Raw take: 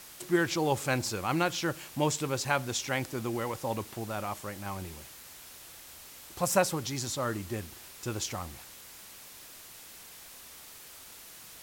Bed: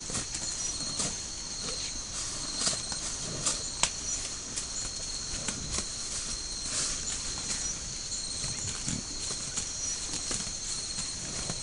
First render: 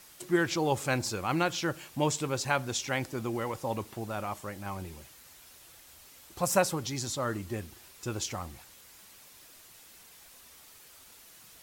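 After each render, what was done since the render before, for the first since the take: noise reduction 6 dB, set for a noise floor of -50 dBFS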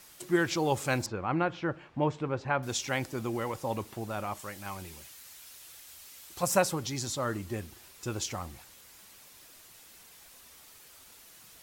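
1.06–2.63 s: low-pass 1.8 kHz; 4.39–6.43 s: tilt shelf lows -4.5 dB, about 1.3 kHz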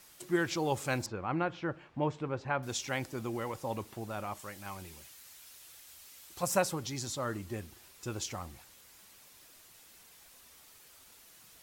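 trim -3.5 dB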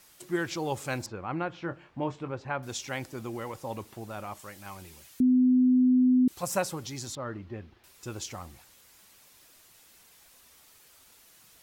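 1.58–2.31 s: doubling 23 ms -9 dB; 5.20–6.28 s: bleep 253 Hz -18 dBFS; 7.15–7.84 s: distance through air 290 m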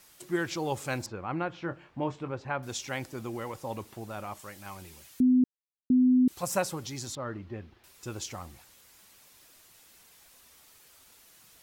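5.44–5.90 s: mute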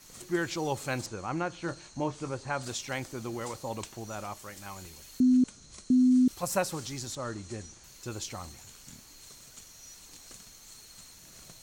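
add bed -17 dB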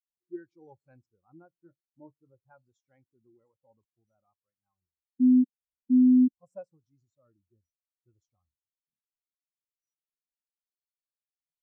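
spectral contrast expander 2.5:1

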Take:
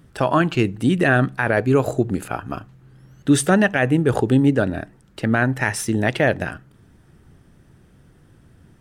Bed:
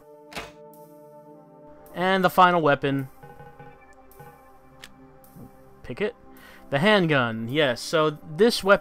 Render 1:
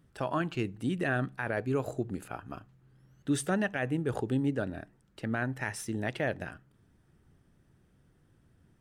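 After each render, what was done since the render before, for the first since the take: trim -13.5 dB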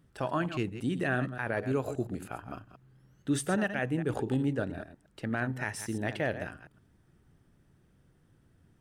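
chunks repeated in reverse 115 ms, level -10.5 dB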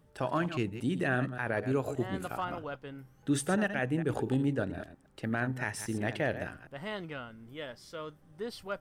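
add bed -20 dB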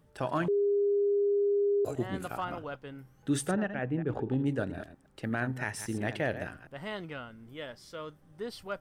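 0.48–1.85 s: bleep 405 Hz -23.5 dBFS; 3.51–4.46 s: tape spacing loss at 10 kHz 27 dB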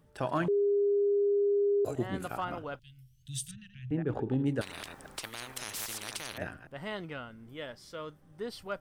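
2.79–3.91 s: Chebyshev band-stop 120–3100 Hz, order 3; 4.61–6.38 s: spectrum-flattening compressor 10:1

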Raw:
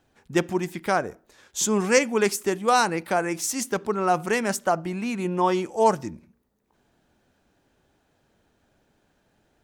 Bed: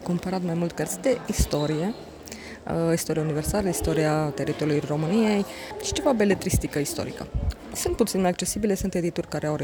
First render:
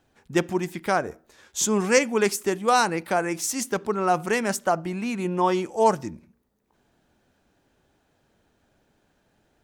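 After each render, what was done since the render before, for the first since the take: 1.05–1.65 s: doubling 13 ms -7.5 dB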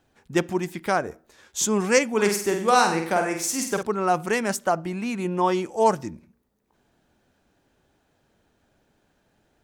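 2.09–3.83 s: flutter echo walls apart 8.4 m, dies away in 0.53 s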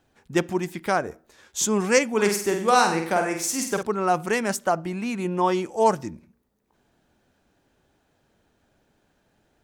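no audible change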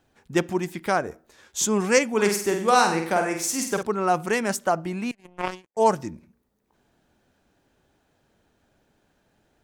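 5.11–5.77 s: power-law waveshaper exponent 3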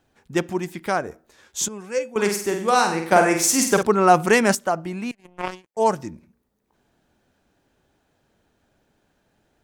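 1.68–2.16 s: feedback comb 510 Hz, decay 0.19 s, harmonics odd, mix 80%; 3.12–4.55 s: gain +7.5 dB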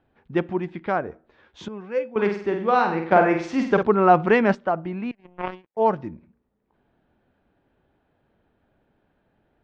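low-pass 3.7 kHz 24 dB/octave; treble shelf 2.8 kHz -10.5 dB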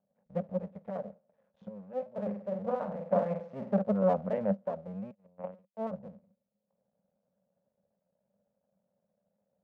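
cycle switcher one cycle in 2, muted; two resonant band-passes 330 Hz, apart 1.5 oct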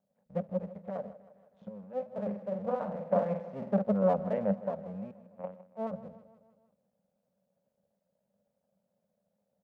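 feedback delay 158 ms, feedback 57%, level -16.5 dB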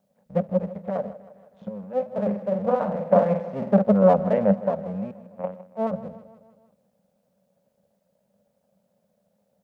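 trim +10 dB

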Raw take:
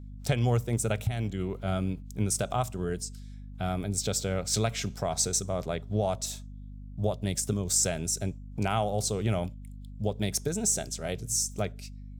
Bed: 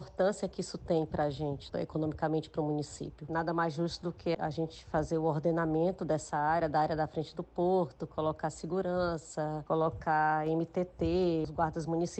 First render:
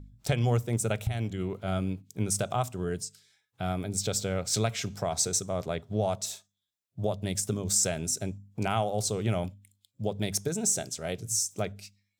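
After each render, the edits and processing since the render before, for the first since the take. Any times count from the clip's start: de-hum 50 Hz, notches 5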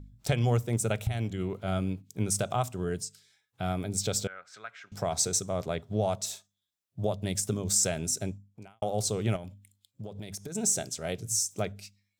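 4.27–4.92 s: band-pass filter 1.5 kHz, Q 4.1; 8.30–8.82 s: fade out quadratic; 9.36–10.55 s: compression, threshold -36 dBFS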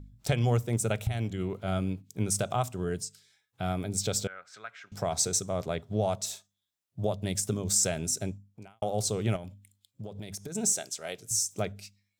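10.73–11.31 s: high-pass 690 Hz 6 dB/octave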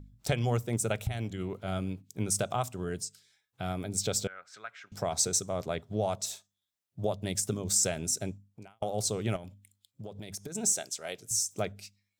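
harmonic-percussive split harmonic -4 dB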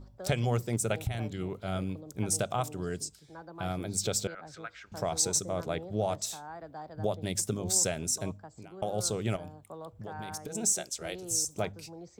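add bed -14.5 dB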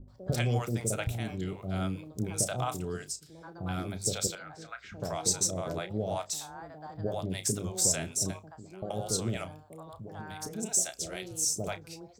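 doubling 32 ms -11.5 dB; bands offset in time lows, highs 80 ms, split 590 Hz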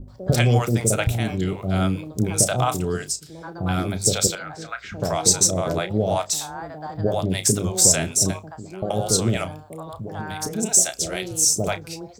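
trim +11 dB

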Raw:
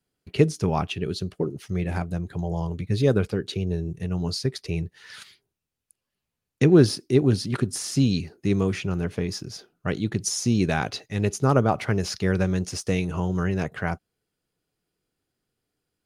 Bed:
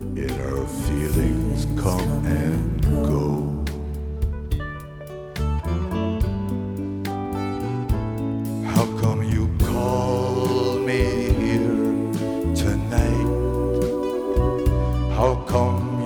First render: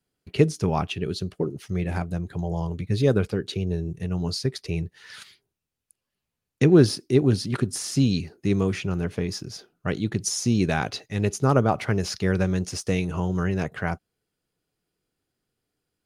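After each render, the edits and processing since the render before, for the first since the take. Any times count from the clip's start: no audible change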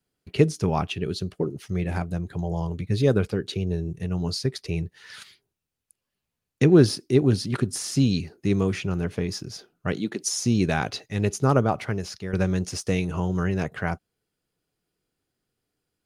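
9.92–10.32 s: high-pass 110 Hz -> 400 Hz 24 dB/octave; 11.51–12.33 s: fade out, to -11 dB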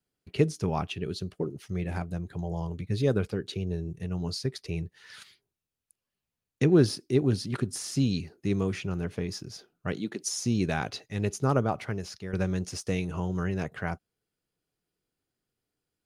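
trim -5 dB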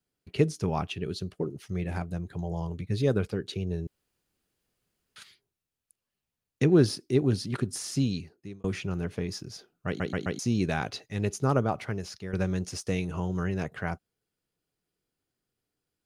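3.87–5.16 s: room tone; 7.95–8.64 s: fade out linear; 9.87 s: stutter in place 0.13 s, 4 plays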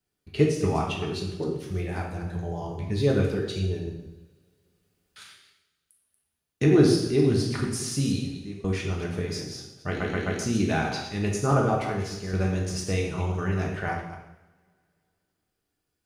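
chunks repeated in reverse 131 ms, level -9 dB; two-slope reverb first 0.79 s, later 2.6 s, from -25 dB, DRR -1 dB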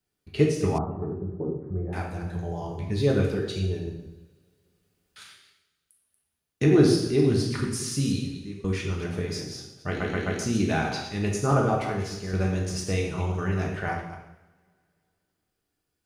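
0.78–1.93 s: Gaussian low-pass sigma 8.3 samples; 7.49–9.06 s: peaking EQ 700 Hz -11.5 dB 0.33 oct

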